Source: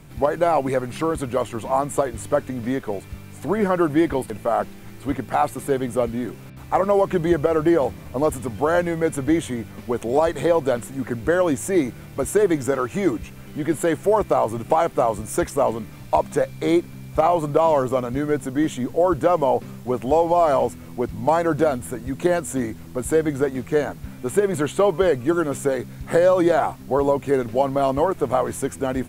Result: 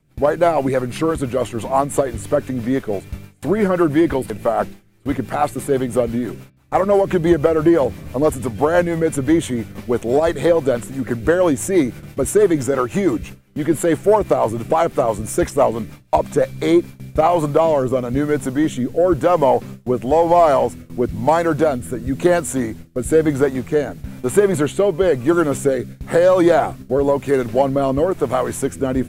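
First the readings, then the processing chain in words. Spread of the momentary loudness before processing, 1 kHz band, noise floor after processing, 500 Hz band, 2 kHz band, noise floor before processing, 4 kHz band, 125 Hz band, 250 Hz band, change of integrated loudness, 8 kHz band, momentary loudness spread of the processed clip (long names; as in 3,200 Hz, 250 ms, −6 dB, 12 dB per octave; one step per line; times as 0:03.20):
10 LU, +2.0 dB, −44 dBFS, +4.0 dB, +3.0 dB, −40 dBFS, +3.5 dB, +4.5 dB, +4.5 dB, +3.5 dB, +4.0 dB, 8 LU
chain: rotating-speaker cabinet horn 6 Hz, later 1 Hz, at 0:16.37
in parallel at −5 dB: soft clipping −14.5 dBFS, distortion −16 dB
on the sum: noise gate with hold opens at −26 dBFS
level +2.5 dB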